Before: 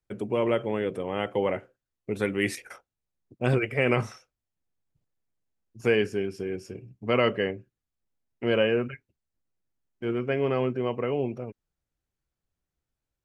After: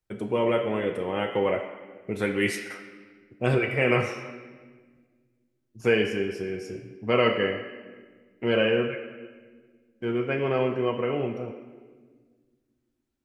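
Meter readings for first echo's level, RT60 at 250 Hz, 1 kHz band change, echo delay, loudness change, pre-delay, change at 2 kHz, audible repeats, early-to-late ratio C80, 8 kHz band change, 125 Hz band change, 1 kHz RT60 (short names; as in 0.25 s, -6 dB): none, 2.5 s, +2.0 dB, none, +1.0 dB, 7 ms, +2.5 dB, none, 8.0 dB, n/a, 0.0 dB, 1.3 s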